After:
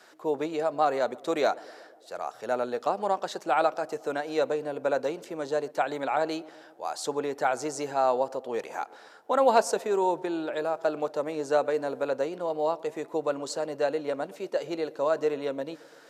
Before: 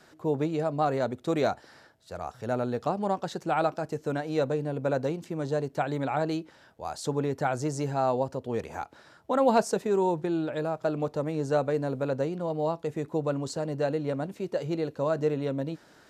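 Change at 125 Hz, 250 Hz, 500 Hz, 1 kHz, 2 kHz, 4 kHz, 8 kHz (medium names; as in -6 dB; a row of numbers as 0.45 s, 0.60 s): -15.5 dB, -4.5 dB, +1.0 dB, +2.5 dB, +3.0 dB, +3.0 dB, +3.0 dB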